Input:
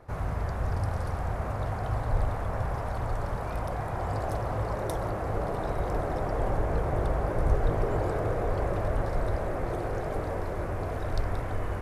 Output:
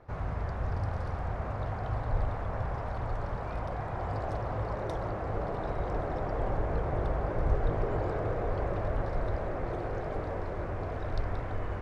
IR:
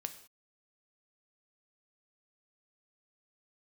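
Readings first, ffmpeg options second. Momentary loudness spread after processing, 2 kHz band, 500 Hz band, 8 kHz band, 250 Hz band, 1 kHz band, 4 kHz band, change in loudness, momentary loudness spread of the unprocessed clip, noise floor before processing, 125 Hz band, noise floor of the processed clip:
4 LU, -3.0 dB, -3.0 dB, under -10 dB, -3.0 dB, -3.0 dB, -5.0 dB, -3.0 dB, 4 LU, -33 dBFS, -3.0 dB, -36 dBFS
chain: -af "lowpass=4.6k,volume=-3dB"

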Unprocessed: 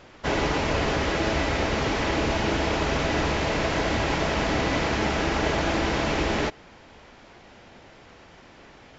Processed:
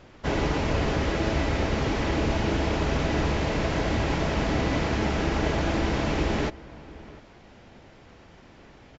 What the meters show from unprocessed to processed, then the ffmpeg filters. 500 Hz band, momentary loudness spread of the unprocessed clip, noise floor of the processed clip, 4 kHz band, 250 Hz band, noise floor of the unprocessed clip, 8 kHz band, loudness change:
-2.0 dB, 1 LU, -51 dBFS, -4.5 dB, +0.5 dB, -50 dBFS, n/a, -1.5 dB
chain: -filter_complex "[0:a]lowshelf=f=350:g=7.5,asplit=2[a][b];[b]adelay=699.7,volume=-19dB,highshelf=f=4k:g=-15.7[c];[a][c]amix=inputs=2:normalize=0,volume=-4.5dB"

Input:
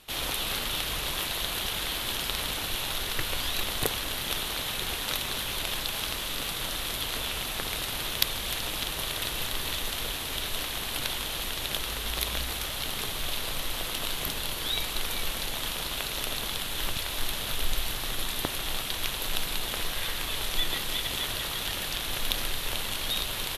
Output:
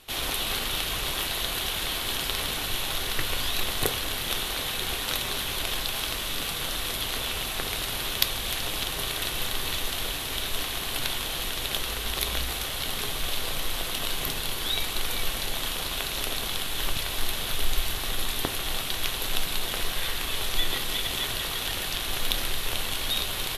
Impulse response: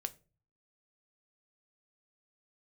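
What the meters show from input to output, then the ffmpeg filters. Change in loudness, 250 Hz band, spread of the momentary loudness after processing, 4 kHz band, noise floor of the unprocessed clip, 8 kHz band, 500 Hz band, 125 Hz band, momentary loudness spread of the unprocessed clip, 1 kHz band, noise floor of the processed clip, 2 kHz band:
+2.0 dB, +1.5 dB, 2 LU, +2.0 dB, -34 dBFS, +2.0 dB, +2.0 dB, +2.0 dB, 2 LU, +2.0 dB, -32 dBFS, +2.0 dB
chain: -filter_complex "[1:a]atrim=start_sample=2205[a];[0:a][a]afir=irnorm=-1:irlink=0,volume=3dB"

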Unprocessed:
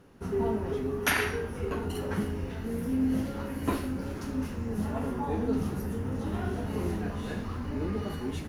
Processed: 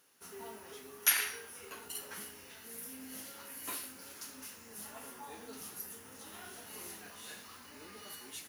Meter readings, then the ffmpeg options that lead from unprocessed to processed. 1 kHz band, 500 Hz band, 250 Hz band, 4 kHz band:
-12.0 dB, -19.0 dB, -24.0 dB, -1.0 dB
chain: -af "aderivative,volume=5dB"

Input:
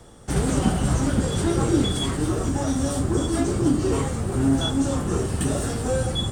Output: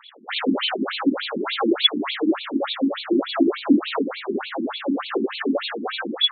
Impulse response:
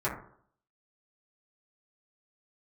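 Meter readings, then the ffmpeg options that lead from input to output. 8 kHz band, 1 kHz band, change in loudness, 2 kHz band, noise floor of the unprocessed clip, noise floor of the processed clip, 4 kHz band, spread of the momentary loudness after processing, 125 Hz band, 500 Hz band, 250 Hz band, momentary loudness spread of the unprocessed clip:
under -40 dB, +2.0 dB, 0.0 dB, +6.5 dB, -29 dBFS, -37 dBFS, +8.5 dB, 9 LU, under -20 dB, +0.5 dB, +0.5 dB, 4 LU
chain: -af "crystalizer=i=6:c=0,afftfilt=real='re*between(b*sr/1024,250*pow(3200/250,0.5+0.5*sin(2*PI*3.4*pts/sr))/1.41,250*pow(3200/250,0.5+0.5*sin(2*PI*3.4*pts/sr))*1.41)':imag='im*between(b*sr/1024,250*pow(3200/250,0.5+0.5*sin(2*PI*3.4*pts/sr))/1.41,250*pow(3200/250,0.5+0.5*sin(2*PI*3.4*pts/sr))*1.41)':win_size=1024:overlap=0.75,volume=7.5dB"

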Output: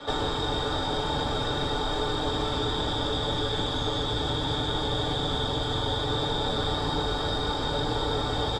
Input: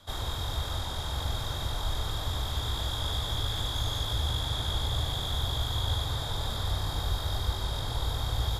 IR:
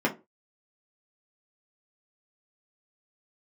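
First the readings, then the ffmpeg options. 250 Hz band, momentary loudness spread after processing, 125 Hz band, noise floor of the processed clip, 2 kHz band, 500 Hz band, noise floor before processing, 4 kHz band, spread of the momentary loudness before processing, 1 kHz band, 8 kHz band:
+12.5 dB, 1 LU, -0.5 dB, -29 dBFS, +7.0 dB, +12.5 dB, -35 dBFS, +4.0 dB, 3 LU, +8.5 dB, -2.5 dB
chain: -filter_complex "[0:a]lowpass=f=8.3k:w=0.5412,lowpass=f=8.3k:w=1.3066,aecho=1:1:6.8:0.46,acrossover=split=200|5800[a][b][c];[a]acompressor=threshold=-32dB:ratio=4[d];[b]acompressor=threshold=-47dB:ratio=4[e];[c]acompressor=threshold=-53dB:ratio=4[f];[d][e][f]amix=inputs=3:normalize=0[g];[1:a]atrim=start_sample=2205,asetrate=66150,aresample=44100[h];[g][h]afir=irnorm=-1:irlink=0,volume=7.5dB"

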